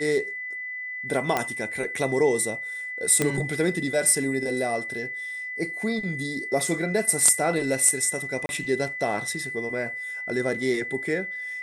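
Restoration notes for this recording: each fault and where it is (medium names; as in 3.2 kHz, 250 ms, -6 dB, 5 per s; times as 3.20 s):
whine 2 kHz -31 dBFS
1.37 s: pop -9 dBFS
3.22 s: pop -8 dBFS
6.60 s: dropout 2.4 ms
8.46–8.49 s: dropout 31 ms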